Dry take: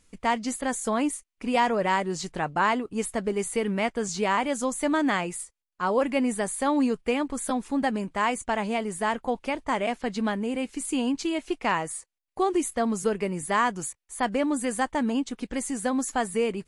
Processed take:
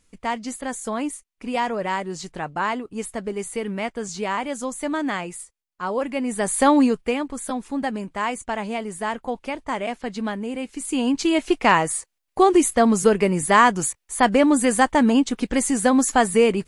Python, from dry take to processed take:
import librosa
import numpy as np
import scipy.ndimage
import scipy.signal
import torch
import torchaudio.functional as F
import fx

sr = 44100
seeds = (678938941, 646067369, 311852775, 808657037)

y = fx.gain(x, sr, db=fx.line((6.24, -1.0), (6.6, 10.0), (7.27, 0.0), (10.71, 0.0), (11.37, 9.0)))